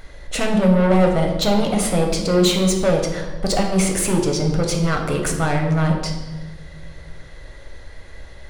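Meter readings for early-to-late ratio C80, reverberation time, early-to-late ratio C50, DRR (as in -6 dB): 7.5 dB, 1.3 s, 5.5 dB, 1.5 dB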